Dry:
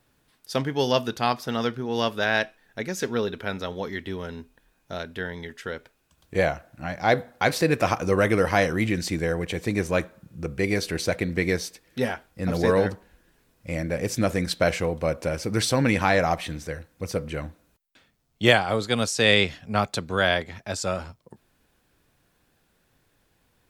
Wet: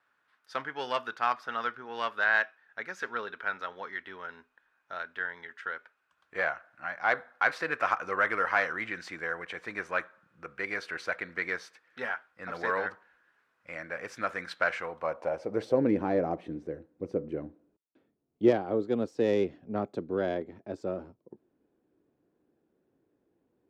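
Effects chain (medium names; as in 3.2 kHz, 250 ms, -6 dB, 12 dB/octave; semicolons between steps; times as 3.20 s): self-modulated delay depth 0.089 ms; band-pass sweep 1.4 kHz -> 340 Hz, 14.84–15.95 s; trim +3 dB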